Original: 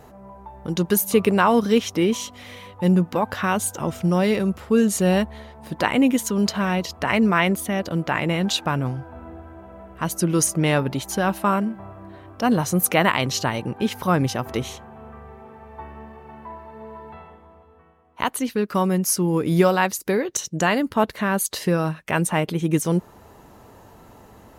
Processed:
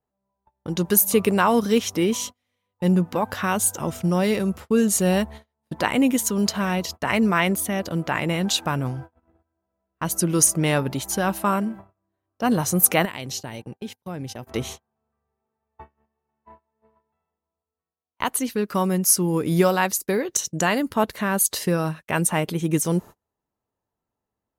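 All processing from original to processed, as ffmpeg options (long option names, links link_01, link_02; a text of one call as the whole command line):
ffmpeg -i in.wav -filter_complex "[0:a]asettb=1/sr,asplit=3[link_01][link_02][link_03];[link_01]atrim=end=13.054[link_04];[link_02]atrim=start=13.05:end=14.47,asetpts=PTS-STARTPTS,afade=type=in:duration=0.004:curve=qsin,afade=type=out:start_time=1.416:duration=0.004:curve=qsin,equalizer=frequency=1200:width_type=o:width=0.75:gain=-8.5,agate=range=-12dB:threshold=-30dB:ratio=16:release=100:detection=peak,acompressor=threshold=-31dB:ratio=2.5:attack=3.2:release=140:knee=1:detection=peak[link_05];[link_03]atrim=start=14.466[link_06];[link_04][link_05]acrossfade=duration=0.004:curve1=hsin:curve2=qsin[link_07];[link_07][link_06]acrossfade=duration=0.004:curve1=qsin:curve2=hsin,agate=range=-36dB:threshold=-34dB:ratio=16:detection=peak,adynamicequalizer=threshold=0.0112:dfrequency=5200:dqfactor=0.7:tfrequency=5200:tqfactor=0.7:attack=5:release=100:ratio=0.375:range=3.5:mode=boostabove:tftype=highshelf,volume=-1.5dB" out.wav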